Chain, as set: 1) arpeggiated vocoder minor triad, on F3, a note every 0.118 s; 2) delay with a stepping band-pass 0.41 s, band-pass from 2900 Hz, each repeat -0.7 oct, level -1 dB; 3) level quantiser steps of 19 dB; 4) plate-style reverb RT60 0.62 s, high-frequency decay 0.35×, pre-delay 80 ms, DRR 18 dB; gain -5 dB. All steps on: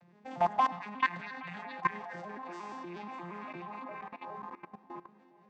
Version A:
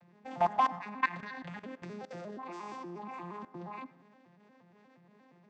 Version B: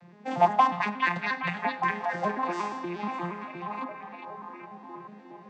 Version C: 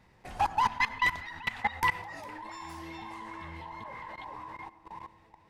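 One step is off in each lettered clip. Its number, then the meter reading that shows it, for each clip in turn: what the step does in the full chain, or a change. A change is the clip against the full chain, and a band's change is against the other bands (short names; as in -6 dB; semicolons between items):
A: 2, momentary loudness spread change -2 LU; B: 3, momentary loudness spread change +3 LU; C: 1, 500 Hz band -10.5 dB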